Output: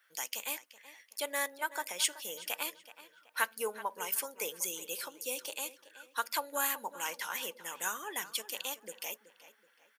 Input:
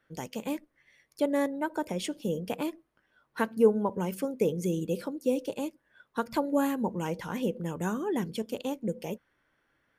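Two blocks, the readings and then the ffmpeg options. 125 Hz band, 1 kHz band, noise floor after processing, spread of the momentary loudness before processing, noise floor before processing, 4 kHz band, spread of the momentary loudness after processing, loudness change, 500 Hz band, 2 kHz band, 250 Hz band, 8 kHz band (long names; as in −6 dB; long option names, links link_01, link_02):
below −30 dB, −2.5 dB, −69 dBFS, 10 LU, −75 dBFS, +6.5 dB, 10 LU, −5.0 dB, −13.0 dB, +4.0 dB, −23.5 dB, +10.5 dB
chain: -filter_complex "[0:a]highpass=1400,highshelf=frequency=7800:gain=10.5,asplit=2[link_01][link_02];[link_02]adelay=377,lowpass=frequency=4000:poles=1,volume=-15dB,asplit=2[link_03][link_04];[link_04]adelay=377,lowpass=frequency=4000:poles=1,volume=0.39,asplit=2[link_05][link_06];[link_06]adelay=377,lowpass=frequency=4000:poles=1,volume=0.39,asplit=2[link_07][link_08];[link_08]adelay=377,lowpass=frequency=4000:poles=1,volume=0.39[link_09];[link_03][link_05][link_07][link_09]amix=inputs=4:normalize=0[link_10];[link_01][link_10]amix=inputs=2:normalize=0,volume=5dB"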